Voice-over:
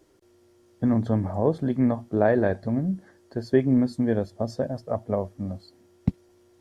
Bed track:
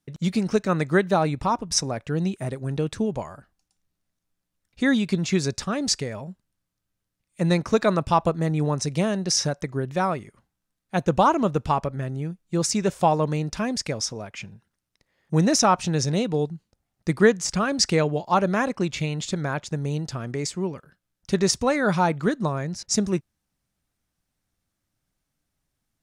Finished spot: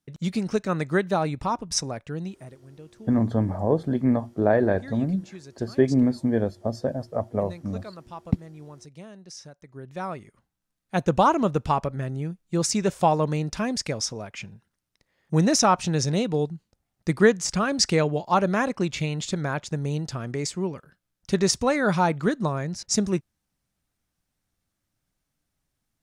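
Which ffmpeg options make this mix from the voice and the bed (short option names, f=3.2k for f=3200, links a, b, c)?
-filter_complex "[0:a]adelay=2250,volume=0.5dB[a];[1:a]volume=16.5dB,afade=t=out:st=1.85:d=0.75:silence=0.141254,afade=t=in:st=9.63:d=1.26:silence=0.105925[b];[a][b]amix=inputs=2:normalize=0"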